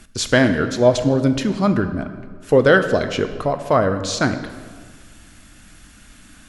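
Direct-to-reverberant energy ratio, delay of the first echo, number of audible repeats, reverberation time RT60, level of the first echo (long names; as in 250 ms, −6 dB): 8.0 dB, no echo audible, no echo audible, 1.7 s, no echo audible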